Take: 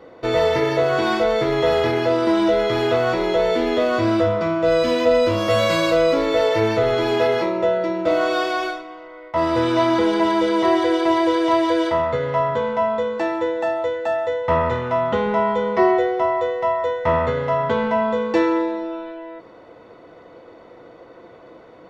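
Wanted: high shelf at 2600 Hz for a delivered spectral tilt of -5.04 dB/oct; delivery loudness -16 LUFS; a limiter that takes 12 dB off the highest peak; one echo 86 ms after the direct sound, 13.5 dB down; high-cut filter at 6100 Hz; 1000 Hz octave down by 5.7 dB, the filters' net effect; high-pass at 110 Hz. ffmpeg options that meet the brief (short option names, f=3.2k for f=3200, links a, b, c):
-af "highpass=110,lowpass=6.1k,equalizer=f=1k:t=o:g=-6,highshelf=f=2.6k:g=-8.5,alimiter=limit=-19dB:level=0:latency=1,aecho=1:1:86:0.211,volume=11dB"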